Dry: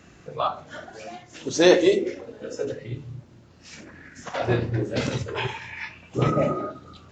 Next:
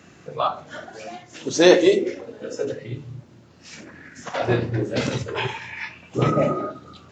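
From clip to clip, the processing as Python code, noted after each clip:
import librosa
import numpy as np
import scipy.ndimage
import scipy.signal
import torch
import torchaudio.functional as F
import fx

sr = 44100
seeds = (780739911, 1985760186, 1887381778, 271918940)

y = scipy.signal.sosfilt(scipy.signal.butter(2, 100.0, 'highpass', fs=sr, output='sos'), x)
y = F.gain(torch.from_numpy(y), 2.5).numpy()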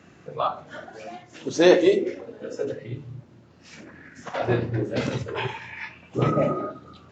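y = fx.high_shelf(x, sr, hz=4100.0, db=-8.0)
y = F.gain(torch.from_numpy(y), -2.0).numpy()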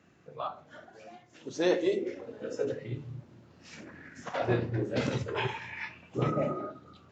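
y = fx.rider(x, sr, range_db=4, speed_s=0.5)
y = F.gain(torch.from_numpy(y), -7.0).numpy()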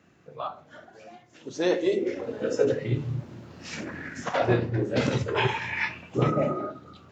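y = fx.rider(x, sr, range_db=5, speed_s=0.5)
y = F.gain(torch.from_numpy(y), 6.5).numpy()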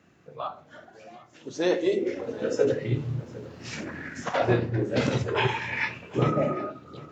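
y = x + 10.0 ** (-20.0 / 20.0) * np.pad(x, (int(756 * sr / 1000.0), 0))[:len(x)]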